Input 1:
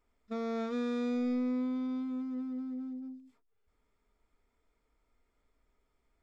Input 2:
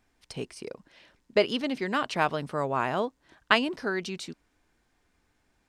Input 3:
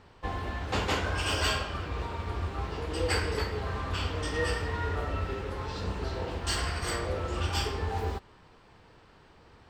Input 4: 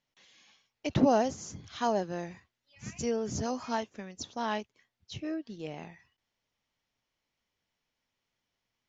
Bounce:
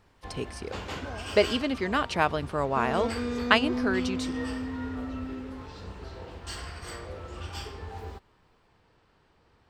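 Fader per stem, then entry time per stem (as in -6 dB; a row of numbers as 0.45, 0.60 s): +1.5, +1.0, -8.0, -18.0 dB; 2.45, 0.00, 0.00, 0.00 s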